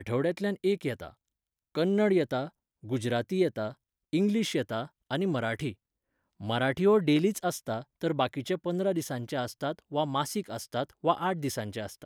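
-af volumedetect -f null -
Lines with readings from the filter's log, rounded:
mean_volume: -30.0 dB
max_volume: -10.8 dB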